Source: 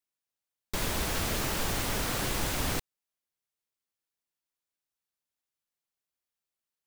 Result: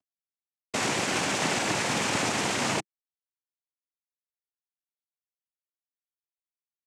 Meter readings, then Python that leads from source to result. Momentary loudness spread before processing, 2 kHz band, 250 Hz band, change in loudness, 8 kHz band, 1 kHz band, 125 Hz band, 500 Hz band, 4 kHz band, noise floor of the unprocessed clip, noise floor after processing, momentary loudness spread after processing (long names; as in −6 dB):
4 LU, +7.0 dB, +5.0 dB, +4.0 dB, +4.0 dB, +6.5 dB, −1.5 dB, +5.5 dB, +4.5 dB, below −85 dBFS, below −85 dBFS, 4 LU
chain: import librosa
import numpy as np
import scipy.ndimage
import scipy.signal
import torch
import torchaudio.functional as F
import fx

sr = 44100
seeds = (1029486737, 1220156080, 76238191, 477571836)

y = fx.cvsd(x, sr, bps=32000)
y = fx.noise_vocoder(y, sr, seeds[0], bands=4)
y = fx.low_shelf(y, sr, hz=130.0, db=-9.5)
y = y * librosa.db_to_amplitude(7.5)